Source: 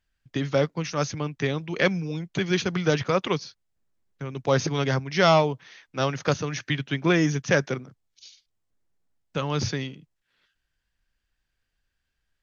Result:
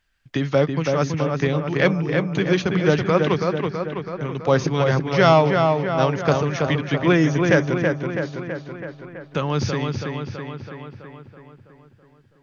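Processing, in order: treble shelf 3.4 kHz -9.5 dB; filtered feedback delay 328 ms, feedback 60%, low-pass 3 kHz, level -4 dB; tape noise reduction on one side only encoder only; trim +4.5 dB

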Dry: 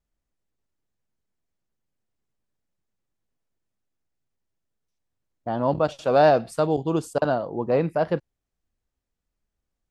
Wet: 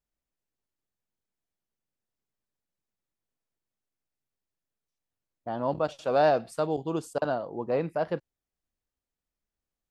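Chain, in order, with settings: bass shelf 190 Hz -5.5 dB; trim -5 dB

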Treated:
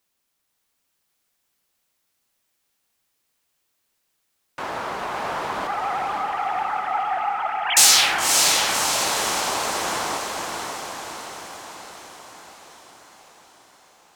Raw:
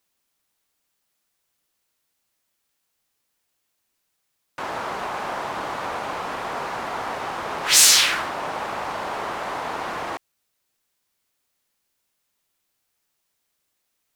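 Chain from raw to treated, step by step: 5.67–7.77 s: formants replaced by sine waves; on a send: echo that smears into a reverb 562 ms, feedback 60%, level -3.5 dB

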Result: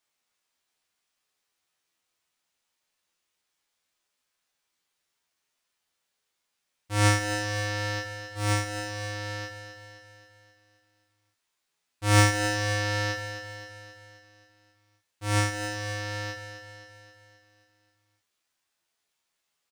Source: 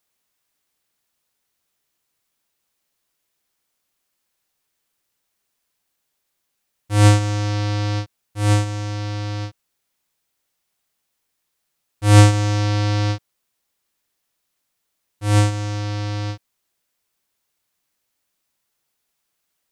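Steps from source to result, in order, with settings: median filter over 3 samples; bass shelf 470 Hz -7 dB; feedback comb 84 Hz, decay 0.38 s, harmonics all, mix 80%; on a send: feedback delay 264 ms, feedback 56%, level -9.5 dB; on the sum: trim +5.5 dB

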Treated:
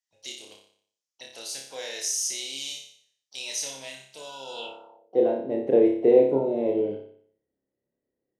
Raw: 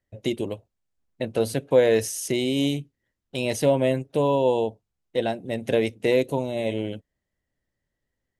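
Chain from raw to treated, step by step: flutter echo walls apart 5.1 m, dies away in 0.58 s; harmony voices +7 st -16 dB; band-pass sweep 5.8 kHz -> 380 Hz, 4.49–5.16 s; trim +5.5 dB

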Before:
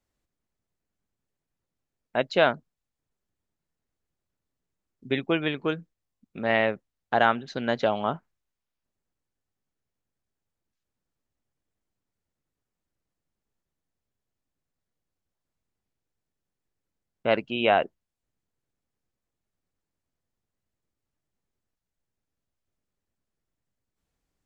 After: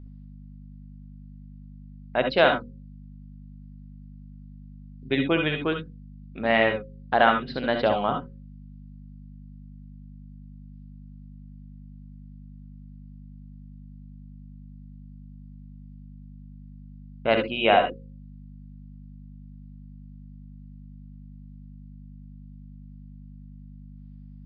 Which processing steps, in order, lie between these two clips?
hum notches 60/120/180/240/300/360/420/480/540 Hz; wow and flutter 17 cents; hum 50 Hz, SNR 11 dB; on a send at -5 dB: reverberation, pre-delay 60 ms; on the sum: resampled via 11.025 kHz; trim +1.5 dB

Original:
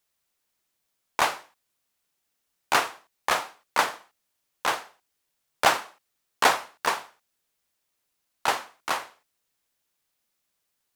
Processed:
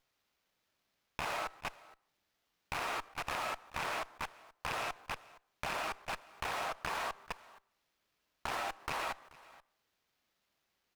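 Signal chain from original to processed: rattle on loud lows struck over -40 dBFS, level -10 dBFS; peak limiter -15.5 dBFS, peak gain reduction 10.5 dB; delay 432 ms -15.5 dB; reverberation RT60 0.40 s, pre-delay 70 ms, DRR 8 dB; level held to a coarse grid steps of 21 dB; sliding maximum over 5 samples; trim +5.5 dB

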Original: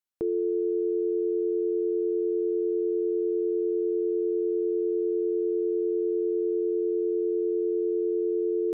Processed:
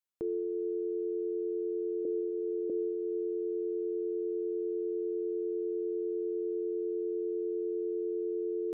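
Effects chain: 2.05–2.70 s: elliptic high-pass 290 Hz; peak limiter -24 dBFS, peak gain reduction 3.5 dB; Schroeder reverb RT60 1.8 s, combs from 28 ms, DRR 13.5 dB; trim -3 dB

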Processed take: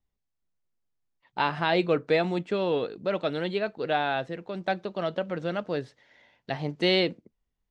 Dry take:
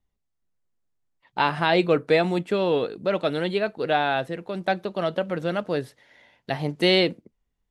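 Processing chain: low-pass 7.2 kHz 24 dB/octave; trim -4 dB

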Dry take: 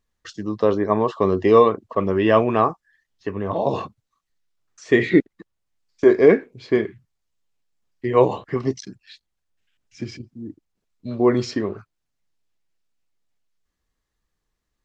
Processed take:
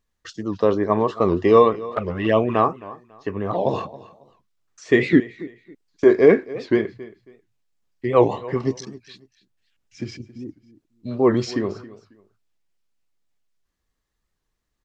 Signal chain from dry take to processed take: 1.73–2.55 s: touch-sensitive flanger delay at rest 8.8 ms, full sweep at -11.5 dBFS; on a send: feedback delay 273 ms, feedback 25%, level -18.5 dB; on the sum: warped record 78 rpm, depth 160 cents

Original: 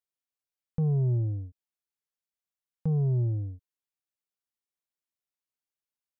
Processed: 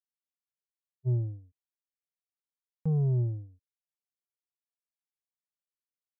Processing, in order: spectral freeze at 0.41 s, 0.65 s; upward expansion 2.5:1, over -35 dBFS

